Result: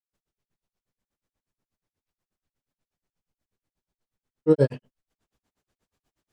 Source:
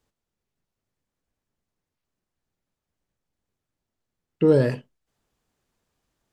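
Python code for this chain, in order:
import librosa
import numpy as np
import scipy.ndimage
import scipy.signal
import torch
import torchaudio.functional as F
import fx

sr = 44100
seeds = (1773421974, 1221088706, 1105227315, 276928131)

y = fx.granulator(x, sr, seeds[0], grain_ms=100.0, per_s=8.3, spray_ms=100.0, spread_st=0)
y = y * 10.0 ** (2.0 / 20.0)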